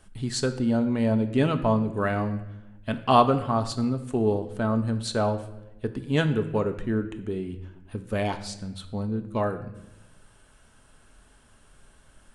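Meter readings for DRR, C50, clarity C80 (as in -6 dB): 6.5 dB, 12.0 dB, 14.0 dB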